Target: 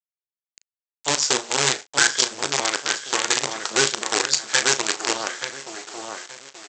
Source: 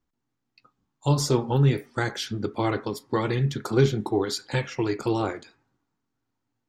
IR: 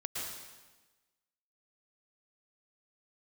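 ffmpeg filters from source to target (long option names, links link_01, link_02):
-filter_complex "[0:a]equalizer=frequency=1600:width_type=o:width=0.23:gain=11,asplit=2[link_01][link_02];[link_02]adelay=879,lowpass=frequency=2000:poles=1,volume=-4dB,asplit=2[link_03][link_04];[link_04]adelay=879,lowpass=frequency=2000:poles=1,volume=0.31,asplit=2[link_05][link_06];[link_06]adelay=879,lowpass=frequency=2000:poles=1,volume=0.31,asplit=2[link_07][link_08];[link_08]adelay=879,lowpass=frequency=2000:poles=1,volume=0.31[link_09];[link_01][link_03][link_05][link_07][link_09]amix=inputs=5:normalize=0,aresample=16000,acrusher=bits=4:dc=4:mix=0:aa=0.000001,aresample=44100,highpass=frequency=370:poles=1,aemphasis=mode=production:type=riaa,asplit=2[link_10][link_11];[link_11]adelay=37,volume=-12dB[link_12];[link_10][link_12]amix=inputs=2:normalize=0,volume=2dB"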